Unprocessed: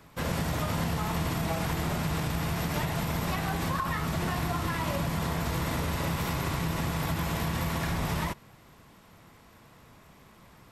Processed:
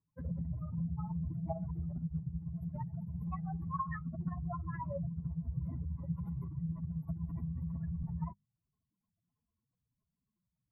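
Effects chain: spectral contrast enhancement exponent 3.8; hum notches 50/100/150/200 Hz; upward expansion 2.5:1, over -47 dBFS; trim -2.5 dB

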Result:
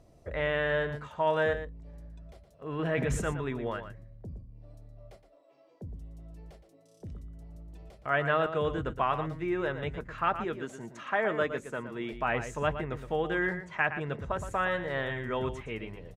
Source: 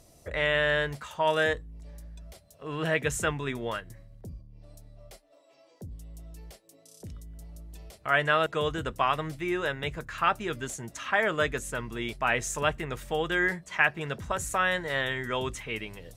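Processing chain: low-pass 1.1 kHz 6 dB/octave; 2.79–3.30 s: transient shaper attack -5 dB, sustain +10 dB; 10.45–12.13 s: high-pass 170 Hz 12 dB/octave; echo from a far wall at 20 m, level -10 dB

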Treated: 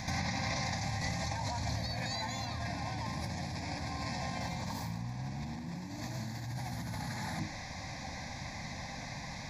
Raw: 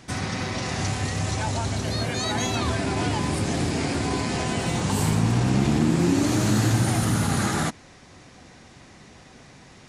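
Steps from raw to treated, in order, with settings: hum notches 50/100/150/200/250/300 Hz; peak limiter -16.5 dBFS, peak gain reduction 6 dB; compressor with a negative ratio -35 dBFS, ratio -1; static phaser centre 1.9 kHz, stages 8; speed mistake 24 fps film run at 25 fps; pre-echo 82 ms -12 dB

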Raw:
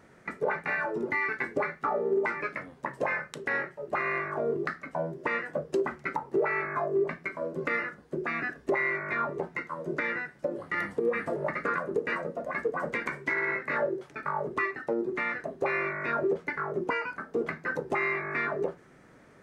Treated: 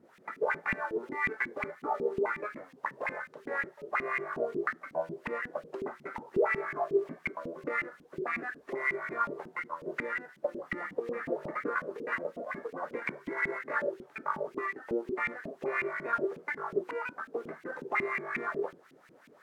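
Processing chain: CVSD coder 64 kbps; added noise blue -53 dBFS; LFO band-pass saw up 5.5 Hz 210–2700 Hz; trim +4 dB

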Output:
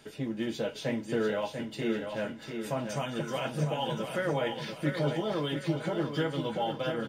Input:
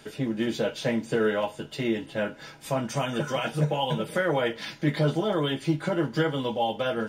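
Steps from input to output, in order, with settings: peaking EQ 1.5 kHz -2 dB 0.34 oct; feedback delay 692 ms, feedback 44%, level -6.5 dB; trim -5.5 dB

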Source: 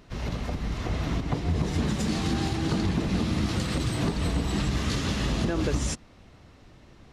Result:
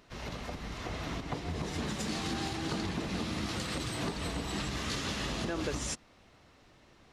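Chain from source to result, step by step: bass shelf 290 Hz -10 dB; trim -3 dB

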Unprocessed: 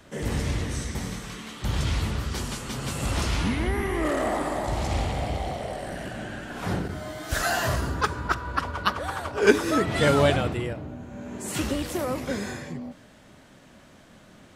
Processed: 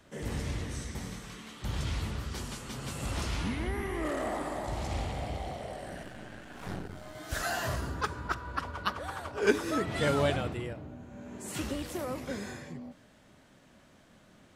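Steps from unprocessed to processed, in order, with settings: 6.03–7.15 s: partial rectifier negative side -12 dB; trim -7.5 dB

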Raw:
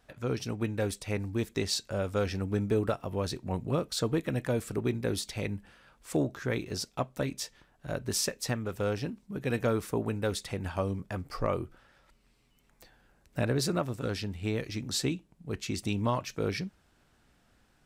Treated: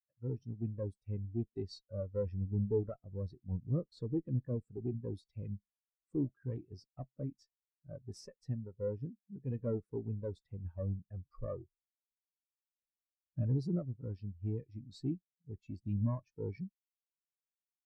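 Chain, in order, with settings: valve stage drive 29 dB, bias 0.7; spectral contrast expander 2.5:1; trim +2.5 dB

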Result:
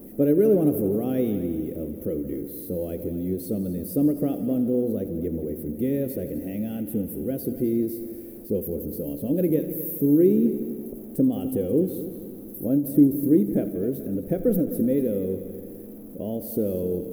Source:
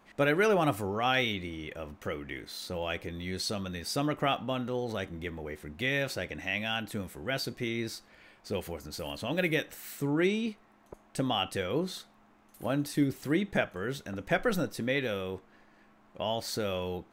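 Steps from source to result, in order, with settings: jump at every zero crossing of -42.5 dBFS; FFT filter 130 Hz 0 dB, 260 Hz +10 dB, 500 Hz +4 dB, 930 Hz -23 dB, 4.1 kHz -25 dB, 7.5 kHz -17 dB, 12 kHz +9 dB; on a send: multi-head delay 84 ms, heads all three, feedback 55%, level -16 dB; on the sum: endings held to a fixed fall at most 190 dB/s; trim +2.5 dB

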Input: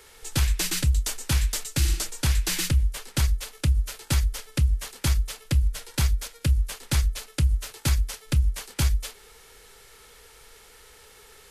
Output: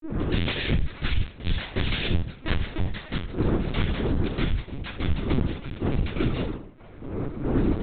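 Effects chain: gliding tape speed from 122% -> 172%; wind noise 240 Hz -29 dBFS; level-controlled noise filter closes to 1.1 kHz, open at -14 dBFS; bass shelf 430 Hz -9 dB; compression 10:1, threshold -29 dBFS, peak gain reduction 11 dB; granulator, spray 30 ms, pitch spread up and down by 0 st; trance gate "xxxxx.xxx.xxx." 62 bpm -12 dB; reverberation RT60 0.35 s, pre-delay 3 ms, DRR -6 dB; LPC vocoder at 8 kHz pitch kept

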